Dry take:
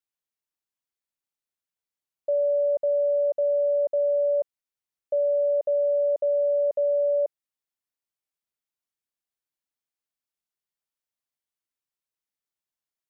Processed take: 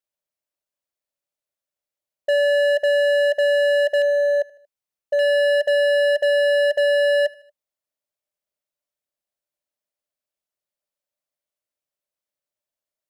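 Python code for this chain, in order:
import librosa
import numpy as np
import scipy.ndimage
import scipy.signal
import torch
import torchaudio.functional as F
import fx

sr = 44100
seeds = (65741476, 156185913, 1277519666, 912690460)

y = fx.peak_eq(x, sr, hz=590.0, db=fx.steps((0.0, 14.0), (4.02, 7.0), (5.19, 15.0)), octaves=0.32)
y = np.clip(10.0 ** (16.5 / 20.0) * y, -1.0, 1.0) / 10.0 ** (16.5 / 20.0)
y = fx.echo_feedback(y, sr, ms=77, feedback_pct=52, wet_db=-23)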